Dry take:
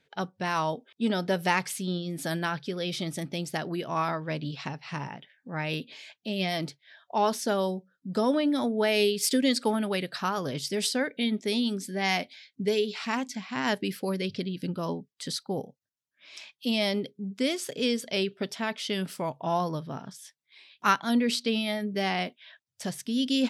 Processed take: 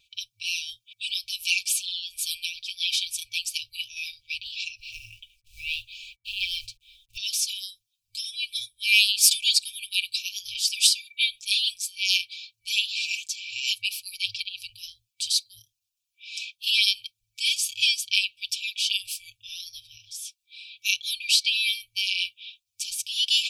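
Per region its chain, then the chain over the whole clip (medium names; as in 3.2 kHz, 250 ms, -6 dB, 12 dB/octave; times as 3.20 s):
4.80–7.17 s: companded quantiser 6-bit + tilt EQ -3 dB/octave
whole clip: FFT band-reject 110–2300 Hz; comb 5.1 ms, depth 71%; trim +9 dB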